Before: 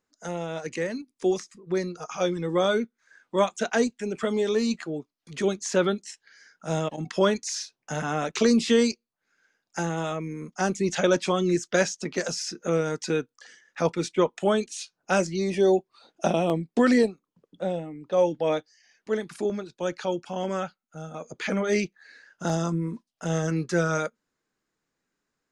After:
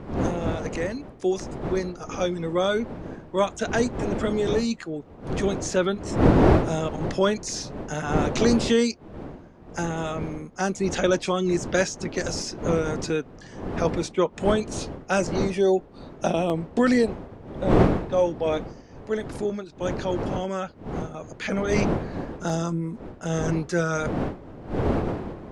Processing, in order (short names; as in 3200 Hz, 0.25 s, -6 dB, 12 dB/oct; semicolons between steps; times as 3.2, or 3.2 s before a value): wind noise 410 Hz -29 dBFS